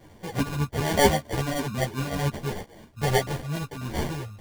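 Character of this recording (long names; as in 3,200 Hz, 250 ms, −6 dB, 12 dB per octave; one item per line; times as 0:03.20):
phaser sweep stages 4, 3.7 Hz, lowest notch 300–1,500 Hz
aliases and images of a low sample rate 1,300 Hz, jitter 0%
a shimmering, thickened sound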